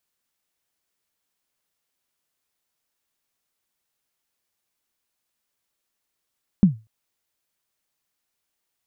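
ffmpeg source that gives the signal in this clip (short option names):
-f lavfi -i "aevalsrc='0.501*pow(10,-3*t/0.26)*sin(2*PI*(210*0.123/log(110/210)*(exp(log(110/210)*min(t,0.123)/0.123)-1)+110*max(t-0.123,0)))':d=0.24:s=44100"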